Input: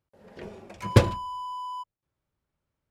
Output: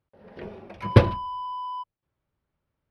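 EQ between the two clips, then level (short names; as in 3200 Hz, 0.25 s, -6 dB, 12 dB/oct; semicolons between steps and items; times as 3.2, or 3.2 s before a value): running mean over 6 samples; +2.5 dB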